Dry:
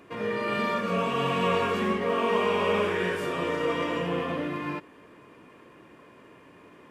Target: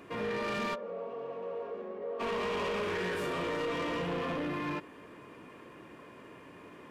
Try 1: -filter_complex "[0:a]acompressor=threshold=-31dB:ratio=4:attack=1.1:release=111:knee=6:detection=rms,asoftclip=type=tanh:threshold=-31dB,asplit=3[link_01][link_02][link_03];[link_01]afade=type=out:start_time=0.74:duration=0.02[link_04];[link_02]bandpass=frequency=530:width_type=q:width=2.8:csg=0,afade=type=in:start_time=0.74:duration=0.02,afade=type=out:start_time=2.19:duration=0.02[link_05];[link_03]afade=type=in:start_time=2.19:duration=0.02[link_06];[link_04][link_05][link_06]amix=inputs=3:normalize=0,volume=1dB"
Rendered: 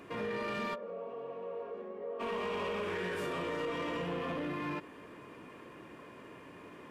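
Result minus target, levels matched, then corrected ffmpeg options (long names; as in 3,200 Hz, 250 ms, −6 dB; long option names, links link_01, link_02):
downward compressor: peak gain reduction +6 dB
-filter_complex "[0:a]acompressor=threshold=-23dB:ratio=4:attack=1.1:release=111:knee=6:detection=rms,asoftclip=type=tanh:threshold=-31dB,asplit=3[link_01][link_02][link_03];[link_01]afade=type=out:start_time=0.74:duration=0.02[link_04];[link_02]bandpass=frequency=530:width_type=q:width=2.8:csg=0,afade=type=in:start_time=0.74:duration=0.02,afade=type=out:start_time=2.19:duration=0.02[link_05];[link_03]afade=type=in:start_time=2.19:duration=0.02[link_06];[link_04][link_05][link_06]amix=inputs=3:normalize=0,volume=1dB"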